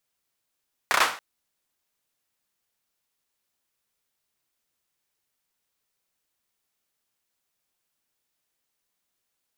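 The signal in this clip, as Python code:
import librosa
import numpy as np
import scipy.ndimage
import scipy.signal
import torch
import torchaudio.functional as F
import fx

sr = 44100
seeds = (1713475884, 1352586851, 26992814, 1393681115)

y = fx.drum_clap(sr, seeds[0], length_s=0.28, bursts=4, spacing_ms=31, hz=1200.0, decay_s=0.39)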